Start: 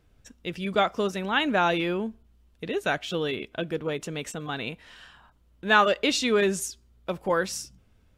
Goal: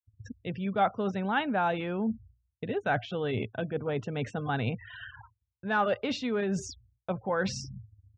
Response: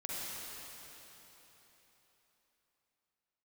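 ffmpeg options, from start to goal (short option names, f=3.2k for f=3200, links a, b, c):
-af "acontrast=90,afftfilt=real='re*gte(hypot(re,im),0.0158)':imag='im*gte(hypot(re,im),0.0158)':win_size=1024:overlap=0.75,aemphasis=mode=reproduction:type=riaa,areverse,acompressor=threshold=-26dB:ratio=8,areverse,highpass=f=110:w=0.5412,highpass=f=110:w=1.3066,equalizer=f=110:t=q:w=4:g=9,equalizer=f=160:t=q:w=4:g=-8,equalizer=f=330:t=q:w=4:g=-8,equalizer=f=790:t=q:w=4:g=7,equalizer=f=1.5k:t=q:w=4:g=4,lowpass=f=6.4k:w=0.5412,lowpass=f=6.4k:w=1.3066,agate=range=-33dB:threshold=-46dB:ratio=3:detection=peak"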